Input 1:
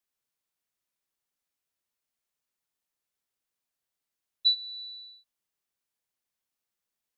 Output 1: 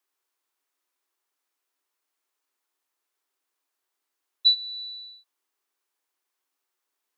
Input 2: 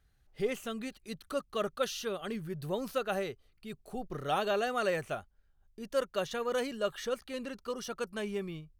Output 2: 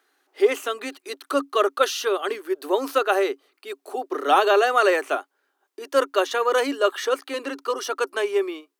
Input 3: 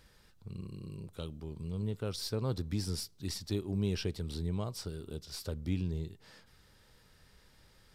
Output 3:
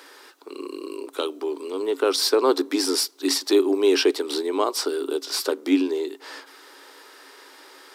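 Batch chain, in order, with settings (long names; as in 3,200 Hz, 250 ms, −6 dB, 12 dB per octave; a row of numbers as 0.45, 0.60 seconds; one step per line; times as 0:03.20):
Chebyshev high-pass with heavy ripple 270 Hz, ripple 6 dB
loudness normalisation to −23 LKFS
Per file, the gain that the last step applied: +10.0, +16.5, +22.5 decibels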